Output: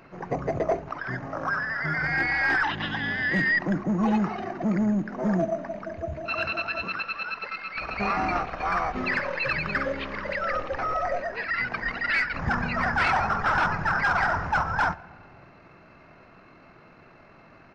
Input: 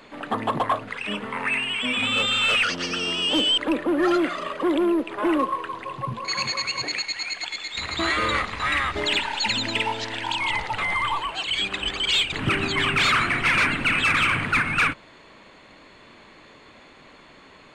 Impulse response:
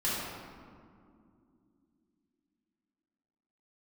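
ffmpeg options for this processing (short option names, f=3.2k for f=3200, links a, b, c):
-filter_complex "[0:a]asplit=2[a][b];[1:a]atrim=start_sample=2205[c];[b][c]afir=irnorm=-1:irlink=0,volume=-26dB[d];[a][d]amix=inputs=2:normalize=0,asetrate=26990,aresample=44100,atempo=1.63392,volume=-2.5dB"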